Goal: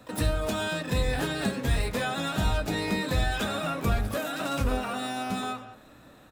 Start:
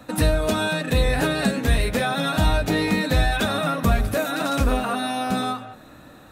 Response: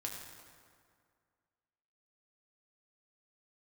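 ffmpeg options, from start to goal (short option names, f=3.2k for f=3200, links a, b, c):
-filter_complex "[0:a]asplit=3[a][b][c];[b]asetrate=22050,aresample=44100,atempo=2,volume=-16dB[d];[c]asetrate=88200,aresample=44100,atempo=0.5,volume=-10dB[e];[a][d][e]amix=inputs=3:normalize=0,bandreject=f=78.42:t=h:w=4,bandreject=f=156.84:t=h:w=4,bandreject=f=235.26:t=h:w=4,bandreject=f=313.68:t=h:w=4,bandreject=f=392.1:t=h:w=4,bandreject=f=470.52:t=h:w=4,bandreject=f=548.94:t=h:w=4,bandreject=f=627.36:t=h:w=4,bandreject=f=705.78:t=h:w=4,bandreject=f=784.2:t=h:w=4,bandreject=f=862.62:t=h:w=4,bandreject=f=941.04:t=h:w=4,bandreject=f=1.01946k:t=h:w=4,bandreject=f=1.09788k:t=h:w=4,bandreject=f=1.1763k:t=h:w=4,bandreject=f=1.25472k:t=h:w=4,bandreject=f=1.33314k:t=h:w=4,bandreject=f=1.41156k:t=h:w=4,bandreject=f=1.48998k:t=h:w=4,bandreject=f=1.5684k:t=h:w=4,bandreject=f=1.64682k:t=h:w=4,bandreject=f=1.72524k:t=h:w=4,bandreject=f=1.80366k:t=h:w=4,bandreject=f=1.88208k:t=h:w=4,bandreject=f=1.9605k:t=h:w=4,bandreject=f=2.03892k:t=h:w=4,bandreject=f=2.11734k:t=h:w=4,bandreject=f=2.19576k:t=h:w=4,volume=-7dB"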